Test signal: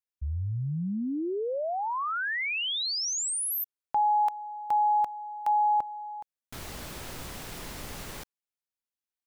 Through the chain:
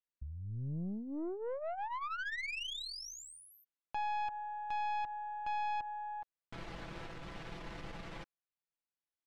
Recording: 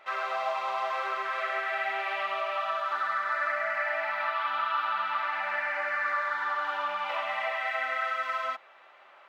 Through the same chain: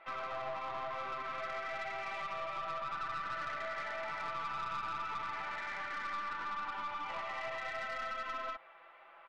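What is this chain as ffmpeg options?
-af "lowpass=2.9k,aecho=1:1:6:0.59,acompressor=threshold=-43dB:ratio=1.5:attack=12:release=100:detection=peak,aeval=exprs='(tanh(39.8*val(0)+0.45)-tanh(0.45))/39.8':c=same,volume=-2dB"

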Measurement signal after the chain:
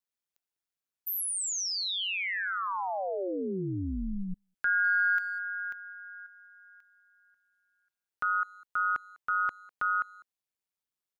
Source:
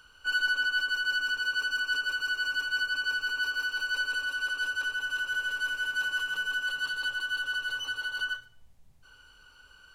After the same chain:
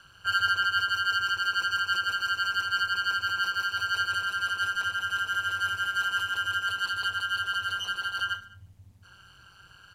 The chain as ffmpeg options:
-filter_complex "[0:a]asplit=2[a][b];[b]adelay=200,highpass=300,lowpass=3.4k,asoftclip=type=hard:threshold=-28dB,volume=-23dB[c];[a][c]amix=inputs=2:normalize=0,aeval=exprs='val(0)*sin(2*PI*95*n/s)':c=same,volume=5dB"

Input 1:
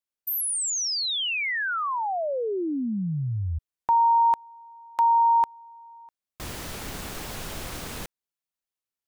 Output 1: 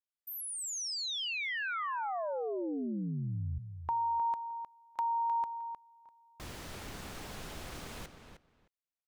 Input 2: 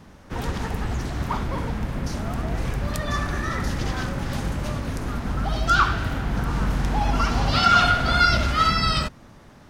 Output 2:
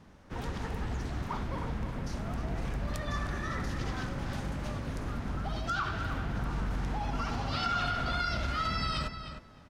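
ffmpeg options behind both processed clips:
-filter_complex "[0:a]highshelf=f=9.7k:g=-8,acompressor=threshold=-25dB:ratio=3:attack=31:release=34:knee=1:detection=rms,asplit=2[a][b];[b]adelay=309,lowpass=f=3.7k:p=1,volume=-8.5dB,asplit=2[c][d];[d]adelay=309,lowpass=f=3.7k:p=1,volume=0.16[e];[a][c][e]amix=inputs=3:normalize=0,volume=-8.5dB"

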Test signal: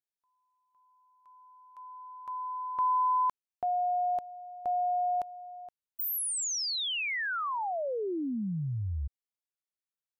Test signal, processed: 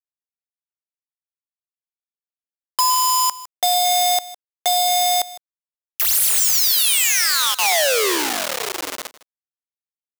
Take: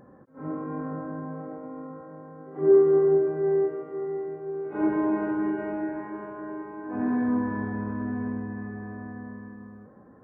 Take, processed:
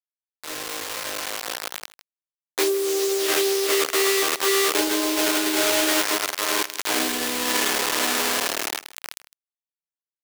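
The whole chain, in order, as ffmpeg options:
-filter_complex "[0:a]asplit=2[a][b];[b]adelay=109,lowpass=f=2.2k:p=1,volume=-14dB,asplit=2[c][d];[d]adelay=109,lowpass=f=2.2k:p=1,volume=0.36,asplit=2[e][f];[f]adelay=109,lowpass=f=2.2k:p=1,volume=0.36[g];[c][e][g]amix=inputs=3:normalize=0[h];[a][h]amix=inputs=2:normalize=0,adynamicequalizer=threshold=0.01:dfrequency=480:dqfactor=1.1:tfrequency=480:tqfactor=1.1:attack=5:release=100:ratio=0.4:range=2:mode=boostabove:tftype=bell,bandreject=f=960:w=16,aeval=exprs='val(0)+0.001*(sin(2*PI*50*n/s)+sin(2*PI*2*50*n/s)/2+sin(2*PI*3*50*n/s)/3+sin(2*PI*4*50*n/s)/4+sin(2*PI*5*50*n/s)/5)':c=same,acrusher=bits=4:mix=0:aa=0.000001,acompressor=threshold=-30dB:ratio=16:attack=89:release=23:knee=1:detection=rms,highshelf=f=2k:g=10.5,dynaudnorm=f=140:g=21:m=11.5dB,highpass=f=330:w=0.5412,highpass=f=330:w=1.3066,aeval=exprs='sgn(val(0))*max(abs(val(0))-0.02,0)':c=same,asplit=2[i][j];[j]aecho=0:1:157:0.126[k];[i][k]amix=inputs=2:normalize=0,volume=-3dB"

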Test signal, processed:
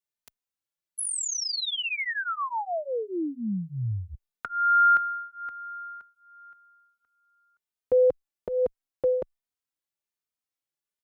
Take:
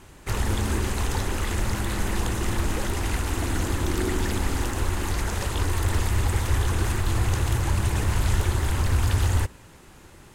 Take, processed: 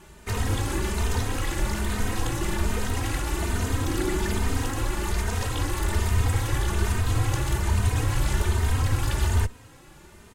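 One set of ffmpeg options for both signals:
-filter_complex "[0:a]asplit=2[a][b];[b]adelay=3,afreqshift=1.2[c];[a][c]amix=inputs=2:normalize=1,volume=2.5dB"

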